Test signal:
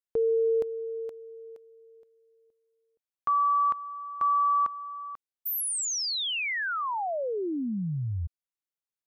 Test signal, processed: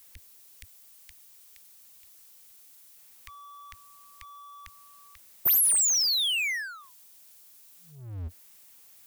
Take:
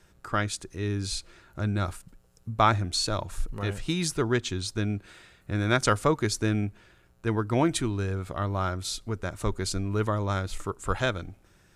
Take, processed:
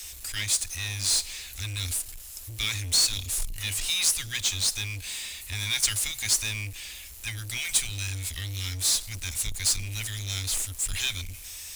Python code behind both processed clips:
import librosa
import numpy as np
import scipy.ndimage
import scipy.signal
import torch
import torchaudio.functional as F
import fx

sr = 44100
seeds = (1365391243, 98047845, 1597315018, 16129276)

y = scipy.signal.sosfilt(scipy.signal.cheby2(6, 80, [200.0, 910.0], 'bandstop', fs=sr, output='sos'), x)
y = scipy.signal.lfilter([1.0, -0.9], [1.0], y)
y = fx.power_curve(y, sr, exponent=0.5)
y = F.gain(torch.from_numpy(y), 4.0).numpy()